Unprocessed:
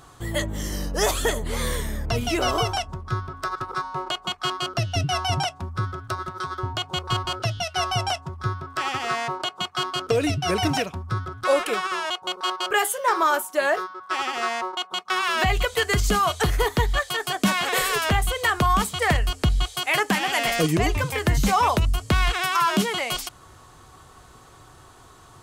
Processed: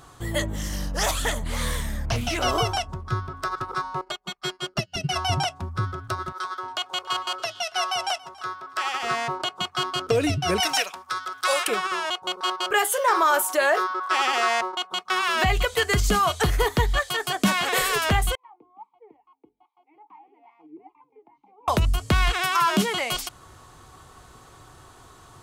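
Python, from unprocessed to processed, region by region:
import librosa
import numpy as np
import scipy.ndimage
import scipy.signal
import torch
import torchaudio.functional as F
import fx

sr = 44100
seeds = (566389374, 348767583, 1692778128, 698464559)

y = fx.chain(x, sr, fx.peak_eq(hz=400.0, db=-14.5, octaves=0.48),
    fx.doppler_dist(depth_ms=0.34), at=(0.56, 2.44))
y = fx.chain(y, sr, fx.comb(ms=5.0, depth=0.95),
    fx.upward_expand(threshold_db=-38.0, expansion=2.5), at=(4.01, 5.16))
y = fx.chain(y, sr, fx.highpass(hz=560.0, slope=12),
    fx.echo_single(ms=280, db=-21.5), at=(6.32, 9.03))
y = fx.chain(y, sr, fx.highpass(hz=700.0, slope=12),
    fx.high_shelf(hz=2300.0, db=8.0),
    fx.band_squash(depth_pct=40), at=(10.6, 11.68))
y = fx.chain(y, sr, fx.highpass(hz=350.0, slope=12),
    fx.env_flatten(amount_pct=50), at=(12.92, 14.61))
y = fx.chain(y, sr, fx.wah_lfo(hz=2.4, low_hz=420.0, high_hz=1100.0, q=9.5),
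    fx.vowel_filter(vowel='u'), at=(18.35, 21.68))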